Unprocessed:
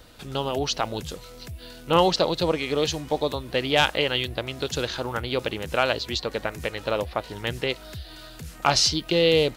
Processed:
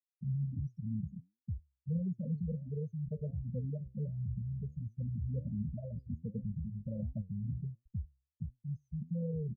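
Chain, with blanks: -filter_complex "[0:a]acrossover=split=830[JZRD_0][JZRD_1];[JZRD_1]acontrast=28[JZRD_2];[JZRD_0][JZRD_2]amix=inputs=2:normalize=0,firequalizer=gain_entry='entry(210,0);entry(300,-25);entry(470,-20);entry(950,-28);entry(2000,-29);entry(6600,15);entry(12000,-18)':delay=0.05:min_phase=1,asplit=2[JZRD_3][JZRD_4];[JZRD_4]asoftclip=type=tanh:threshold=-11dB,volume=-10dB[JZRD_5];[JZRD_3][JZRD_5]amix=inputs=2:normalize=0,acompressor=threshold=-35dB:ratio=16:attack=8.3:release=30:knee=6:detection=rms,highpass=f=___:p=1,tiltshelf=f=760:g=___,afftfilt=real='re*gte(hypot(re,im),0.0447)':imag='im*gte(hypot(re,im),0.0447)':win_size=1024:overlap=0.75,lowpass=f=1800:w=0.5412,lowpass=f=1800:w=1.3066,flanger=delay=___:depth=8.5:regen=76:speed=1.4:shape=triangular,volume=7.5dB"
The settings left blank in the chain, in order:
140, 4, 7.5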